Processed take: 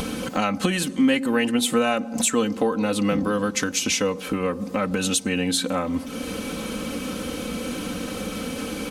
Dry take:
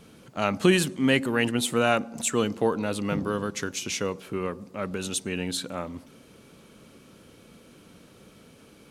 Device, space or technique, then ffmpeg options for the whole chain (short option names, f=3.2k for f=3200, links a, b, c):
upward and downward compression: -af "acompressor=mode=upward:threshold=-29dB:ratio=2.5,acompressor=threshold=-30dB:ratio=4,aecho=1:1:3.9:0.73,volume=9dB"